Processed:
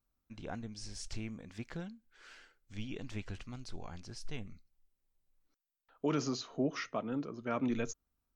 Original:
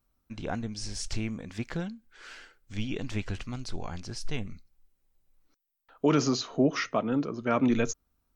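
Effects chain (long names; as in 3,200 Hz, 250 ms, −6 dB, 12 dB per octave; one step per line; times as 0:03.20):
level −9 dB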